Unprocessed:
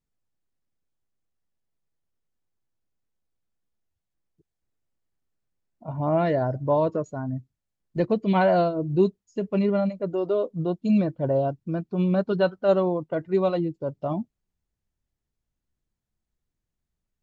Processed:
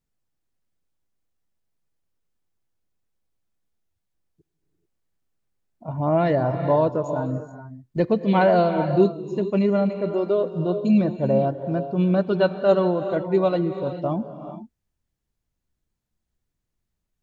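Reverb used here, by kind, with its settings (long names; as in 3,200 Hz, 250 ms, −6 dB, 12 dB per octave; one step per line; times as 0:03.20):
reverb whose tail is shaped and stops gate 460 ms rising, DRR 8.5 dB
level +2.5 dB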